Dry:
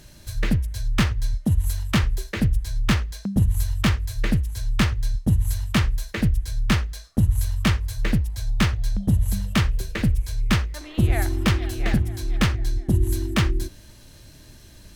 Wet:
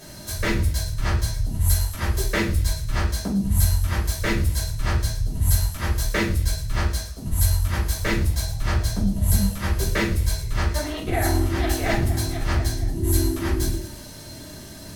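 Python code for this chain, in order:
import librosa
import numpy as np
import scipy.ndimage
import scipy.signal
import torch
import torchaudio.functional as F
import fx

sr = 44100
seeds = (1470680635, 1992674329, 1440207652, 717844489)

y = fx.highpass(x, sr, hz=240.0, slope=6)
y = fx.peak_eq(y, sr, hz=2700.0, db=-5.5, octaves=1.4)
y = fx.over_compress(y, sr, threshold_db=-30.0, ratio=-0.5)
y = fx.echo_wet_highpass(y, sr, ms=112, feedback_pct=59, hz=3800.0, wet_db=-11.5)
y = fx.room_shoebox(y, sr, seeds[0], volume_m3=300.0, walls='furnished', distance_m=5.4)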